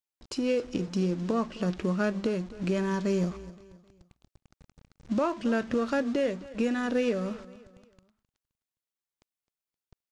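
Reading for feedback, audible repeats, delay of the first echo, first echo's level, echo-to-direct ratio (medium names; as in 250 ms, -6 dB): 38%, 3, 261 ms, -18.0 dB, -17.5 dB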